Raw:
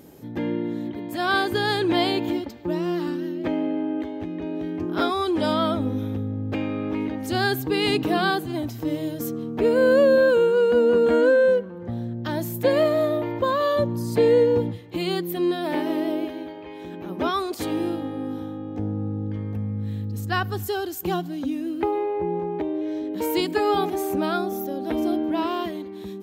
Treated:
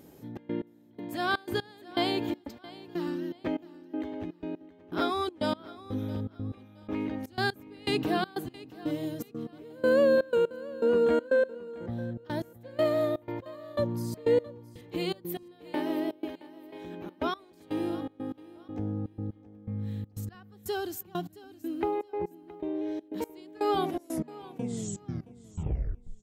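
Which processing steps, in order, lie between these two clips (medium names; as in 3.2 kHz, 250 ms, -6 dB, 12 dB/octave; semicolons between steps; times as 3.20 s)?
tape stop on the ending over 2.52 s; trance gate "xxx.x..." 122 bpm -24 dB; on a send: feedback delay 670 ms, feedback 29%, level -18.5 dB; on the sum: trim -5.5 dB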